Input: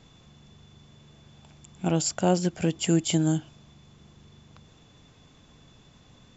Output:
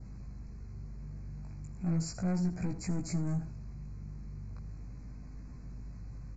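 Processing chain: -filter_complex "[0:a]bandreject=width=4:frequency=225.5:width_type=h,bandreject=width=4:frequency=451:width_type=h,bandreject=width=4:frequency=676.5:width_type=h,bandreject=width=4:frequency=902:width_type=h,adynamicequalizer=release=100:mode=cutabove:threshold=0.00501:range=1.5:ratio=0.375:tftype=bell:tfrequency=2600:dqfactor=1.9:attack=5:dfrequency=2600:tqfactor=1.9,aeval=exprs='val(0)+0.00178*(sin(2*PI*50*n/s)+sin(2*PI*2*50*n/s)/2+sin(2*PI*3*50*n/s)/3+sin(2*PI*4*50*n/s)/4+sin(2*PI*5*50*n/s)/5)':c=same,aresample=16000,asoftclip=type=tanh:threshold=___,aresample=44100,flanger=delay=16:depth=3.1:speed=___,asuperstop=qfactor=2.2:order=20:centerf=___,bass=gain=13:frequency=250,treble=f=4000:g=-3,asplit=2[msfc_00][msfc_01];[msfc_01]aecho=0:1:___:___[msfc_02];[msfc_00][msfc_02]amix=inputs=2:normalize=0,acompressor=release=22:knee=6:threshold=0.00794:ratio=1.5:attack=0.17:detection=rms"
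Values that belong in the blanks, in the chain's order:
0.0531, 0.37, 3200, 80, 0.158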